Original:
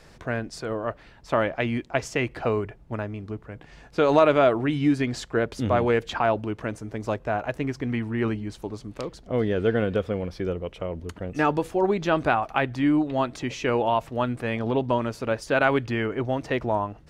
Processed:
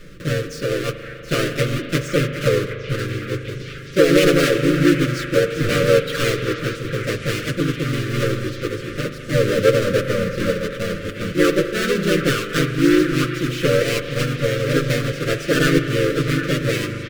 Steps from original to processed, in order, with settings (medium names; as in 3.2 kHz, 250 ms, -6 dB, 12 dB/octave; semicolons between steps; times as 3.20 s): square wave that keeps the level; elliptic band-stop 490–1200 Hz, stop band 40 dB; treble shelf 5.7 kHz -10 dB; hum notches 50/100/150/200/250 Hz; comb 6.7 ms, depth 73%; dynamic bell 500 Hz, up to +4 dB, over -33 dBFS, Q 5; in parallel at +1.5 dB: compression 4:1, threshold -25 dBFS, peak gain reduction 14 dB; on the sum: harmony voices +3 st -1 dB; on a send: repeats whose band climbs or falls 761 ms, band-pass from 1.7 kHz, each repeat 0.7 oct, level -8 dB; on the sum: spring tank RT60 3.7 s, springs 39 ms, chirp 55 ms, DRR 8.5 dB; trim -5 dB